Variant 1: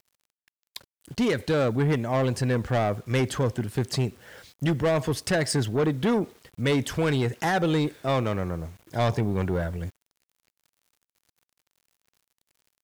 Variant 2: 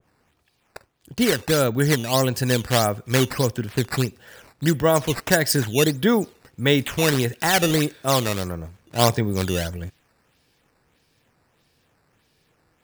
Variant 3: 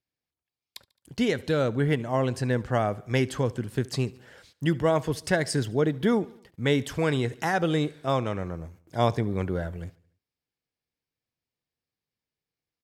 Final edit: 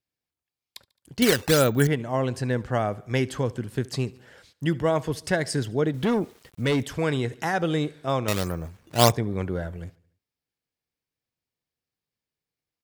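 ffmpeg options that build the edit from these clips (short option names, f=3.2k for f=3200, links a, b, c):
-filter_complex "[1:a]asplit=2[a][b];[2:a]asplit=4[c][d][e][f];[c]atrim=end=1.222[g];[a]atrim=start=1.218:end=1.872[h];[d]atrim=start=1.868:end=5.942[i];[0:a]atrim=start=5.938:end=6.832[j];[e]atrim=start=6.828:end=8.282[k];[b]atrim=start=8.278:end=9.122[l];[f]atrim=start=9.118[m];[g][h]acrossfade=d=0.004:c1=hsin:c2=hsin[n];[n][i]acrossfade=d=0.004:c1=hsin:c2=hsin[o];[o][j]acrossfade=d=0.004:c1=hsin:c2=hsin[p];[p][k]acrossfade=d=0.004:c1=hsin:c2=hsin[q];[q][l]acrossfade=d=0.004:c1=hsin:c2=hsin[r];[r][m]acrossfade=d=0.004:c1=hsin:c2=hsin"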